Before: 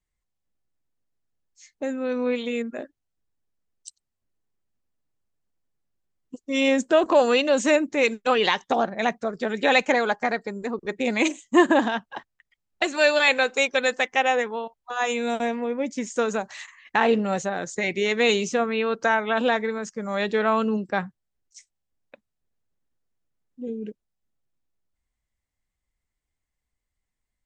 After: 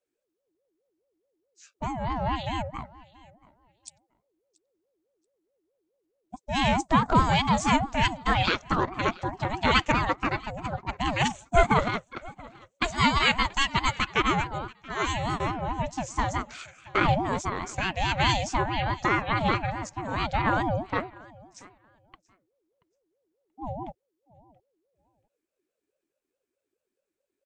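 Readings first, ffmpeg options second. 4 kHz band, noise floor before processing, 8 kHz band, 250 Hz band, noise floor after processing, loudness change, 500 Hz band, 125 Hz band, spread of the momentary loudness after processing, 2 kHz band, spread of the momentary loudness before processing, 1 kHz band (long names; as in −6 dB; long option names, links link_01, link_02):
−0.5 dB, −83 dBFS, −3.0 dB, −4.5 dB, −84 dBFS, −3.0 dB, −9.5 dB, +12.0 dB, 14 LU, −4.0 dB, 13 LU, +1.0 dB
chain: -af "aecho=1:1:681|1362:0.075|0.0142,aeval=exprs='val(0)*sin(2*PI*440*n/s+440*0.3/4.7*sin(2*PI*4.7*n/s))':channel_layout=same"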